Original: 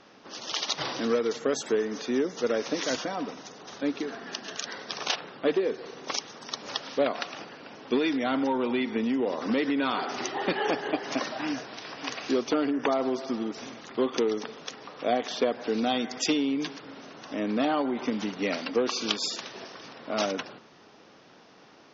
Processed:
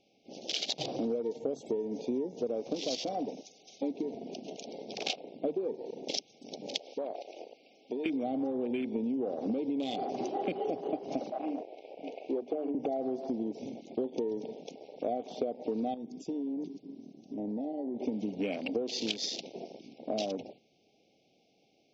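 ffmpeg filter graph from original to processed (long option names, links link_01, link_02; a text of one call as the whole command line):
ffmpeg -i in.wav -filter_complex "[0:a]asettb=1/sr,asplit=3[link_01][link_02][link_03];[link_01]atrim=end=2.904[link_04];[link_02]atrim=start=2.9:end=3.91,asetpts=PTS-STARTPTS,afade=type=in:duration=0.004:curve=qsin,afade=type=out:start_time=1.006:duration=0.004:curve=qsin,highpass=frequency=220:poles=1,highshelf=frequency=3900:gain=9.5[link_05];[link_03]atrim=start=3.906[link_06];[link_04][link_05]acrossfade=duration=0.004:curve1=hsin:curve2=qsin[link_07];[link_07][link_06]acrossfade=duration=0.004:curve1=qsin:curve2=hsin,asettb=1/sr,asplit=3[link_08][link_09][link_10];[link_08]atrim=end=6.804[link_11];[link_09]atrim=start=6.8:end=8.06,asetpts=PTS-STARTPTS,afade=type=in:duration=0.004:curve=qsin,afade=type=out:start_time=1.256:duration=0.004:curve=qsin,highpass=300,acompressor=threshold=-34dB:ratio=5:attack=3.2:release=140:knee=1:detection=peak[link_12];[link_10]atrim=start=8.056[link_13];[link_11][link_12]acrossfade=duration=0.004:curve1=hsin:curve2=qsin[link_14];[link_14][link_13]acrossfade=duration=0.004:curve1=qsin:curve2=hsin,asettb=1/sr,asplit=3[link_15][link_16][link_17];[link_15]atrim=end=11.304[link_18];[link_16]atrim=start=11.3:end=12.75,asetpts=PTS-STARTPTS,afade=type=in:duration=0.004:curve=qsin,afade=type=out:start_time=1.446:duration=0.004:curve=qsin,acrossover=split=300 2900:gain=0.2 1 0.112[link_19][link_20][link_21];[link_19][link_20][link_21]amix=inputs=3:normalize=0,bandreject=frequency=50:width_type=h:width=6,bandreject=frequency=100:width_type=h:width=6,bandreject=frequency=150:width_type=h:width=6,bandreject=frequency=200:width_type=h:width=6,bandreject=frequency=250:width_type=h:width=6,bandreject=frequency=300:width_type=h:width=6[link_22];[link_17]atrim=start=12.746[link_23];[link_18][link_22]acrossfade=duration=0.004:curve1=hsin:curve2=qsin[link_24];[link_24][link_23]acrossfade=duration=0.004:curve1=qsin:curve2=hsin,asettb=1/sr,asplit=3[link_25][link_26][link_27];[link_25]atrim=end=15.944[link_28];[link_26]atrim=start=15.94:end=18,asetpts=PTS-STARTPTS,afade=type=in:duration=0.004:curve=qsin,afade=type=out:start_time=2.056:duration=0.004:curve=qsin,equalizer=frequency=2200:width_type=o:width=2.3:gain=-13.5,acompressor=threshold=-39dB:ratio=2.5:attack=3.2:release=140:knee=1:detection=peak[link_29];[link_27]atrim=start=17.996[link_30];[link_28][link_29]acrossfade=duration=0.004:curve1=hsin:curve2=qsin[link_31];[link_31][link_30]acrossfade=duration=0.004:curve1=qsin:curve2=hsin,afftfilt=real='re*(1-between(b*sr/4096,820,2100))':imag='im*(1-between(b*sr/4096,820,2100))':win_size=4096:overlap=0.75,afwtdn=0.0158,acompressor=threshold=-33dB:ratio=6,volume=3dB" out.wav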